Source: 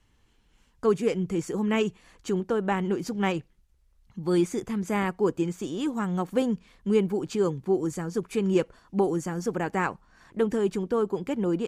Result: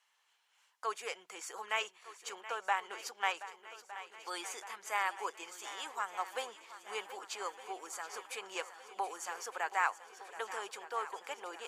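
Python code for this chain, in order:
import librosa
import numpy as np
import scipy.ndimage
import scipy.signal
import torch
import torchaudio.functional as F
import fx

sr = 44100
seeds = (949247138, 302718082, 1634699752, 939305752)

p1 = scipy.signal.sosfilt(scipy.signal.butter(4, 750.0, 'highpass', fs=sr, output='sos'), x)
p2 = p1 + fx.echo_swing(p1, sr, ms=1211, ratio=1.5, feedback_pct=63, wet_db=-14.5, dry=0)
y = p2 * librosa.db_to_amplitude(-2.0)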